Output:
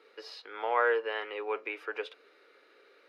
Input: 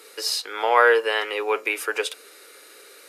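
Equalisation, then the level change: air absorption 310 m; -9.0 dB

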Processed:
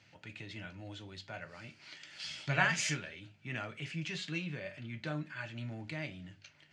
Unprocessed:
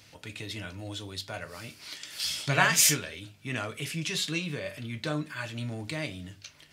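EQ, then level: speaker cabinet 120–6500 Hz, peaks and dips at 270 Hz -7 dB, 450 Hz -9 dB, 650 Hz -3 dB, 1100 Hz -8 dB, 3700 Hz -6 dB, 5400 Hz -6 dB; high shelf 4400 Hz -9 dB; -3.0 dB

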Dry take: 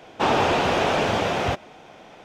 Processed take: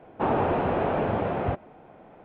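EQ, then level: air absorption 360 m; tape spacing loss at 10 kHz 39 dB; 0.0 dB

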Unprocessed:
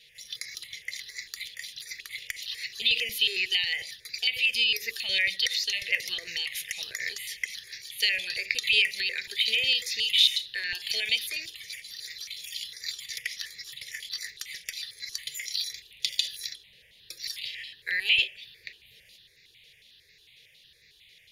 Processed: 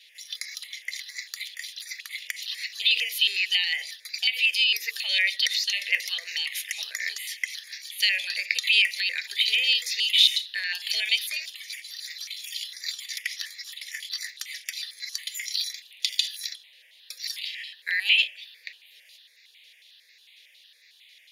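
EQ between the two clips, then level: HPF 650 Hz 24 dB/oct; +2.5 dB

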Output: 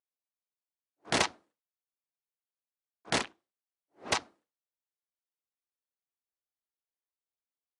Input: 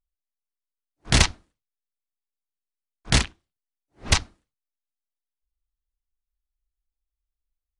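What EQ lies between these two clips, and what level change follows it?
HPF 450 Hz 12 dB/oct; tilt shelf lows +7 dB, about 1200 Hz; -4.0 dB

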